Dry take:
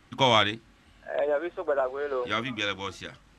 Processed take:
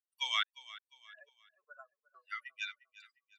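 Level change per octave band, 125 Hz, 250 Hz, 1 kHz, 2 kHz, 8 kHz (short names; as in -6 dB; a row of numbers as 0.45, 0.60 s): under -40 dB, under -40 dB, -17.0 dB, -10.0 dB, n/a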